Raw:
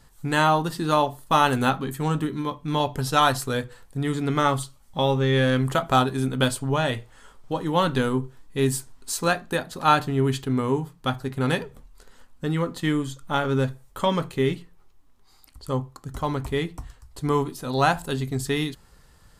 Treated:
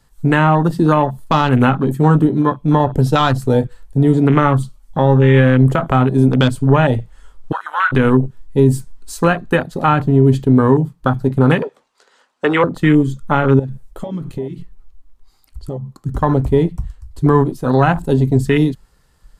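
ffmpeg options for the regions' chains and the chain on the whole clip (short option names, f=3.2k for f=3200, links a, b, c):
-filter_complex "[0:a]asettb=1/sr,asplit=3[a][b][c];[a]atrim=end=7.524[d];[b]atrim=start=7.52:end=7.92,asetpts=PTS-STARTPTS,afade=t=in:d=0.004:c=qsin,afade=t=out:st=0.396:d=0.004:c=qsin,highpass=f=1.5k:t=q:w=10,acompressor=threshold=-32dB:ratio=2:attack=3.2:release=140:knee=1:detection=peak[e];[c]atrim=start=7.916[f];[d][e]acrossfade=d=0.004:c1=hsin:c2=qsin[g];[g][f]acrossfade=d=0.004:c1=qsin:c2=hsin,asettb=1/sr,asplit=3[h][i][j];[h]atrim=end=11.624[k];[i]atrim=start=11.62:end=12.64,asetpts=PTS-STARTPTS,afade=t=in:d=0.004:c=qsin,afade=t=out:st=1.016:d=0.004:c=qsin,highpass=250,acrossover=split=390 7800:gain=0.224 1 0.0891[l][m][n];[l][m][n]amix=inputs=3:normalize=0,acontrast=54[o];[j]atrim=start=12.636[p];[k][o]acrossfade=d=0.004:c1=hsin:c2=qsin[q];[q][p]acrossfade=d=0.004:c1=qsin:c2=hsin,asettb=1/sr,asplit=3[r][s][t];[r]atrim=end=13.594[u];[s]atrim=start=13.59:end=15.98,asetpts=PTS-STARTPTS,afade=t=in:d=0.004:c=qsin,afade=t=out:st=2.386:d=0.004:c=qsin,acompressor=threshold=-33dB:ratio=12:attack=3.2:release=140:knee=1:detection=peak,aphaser=in_gain=1:out_gain=1:delay=3.3:decay=0.22:speed=1.7:type=triangular[v];[t]atrim=start=15.976[w];[u][v]acrossfade=d=0.004:c1=hsin:c2=qsin[x];[x][w]acrossfade=d=0.004:c1=qsin:c2=hsin,afwtdn=0.0316,acrossover=split=250[y][z];[z]acompressor=threshold=-24dB:ratio=10[aa];[y][aa]amix=inputs=2:normalize=0,alimiter=level_in=15dB:limit=-1dB:release=50:level=0:latency=1,volume=-1dB"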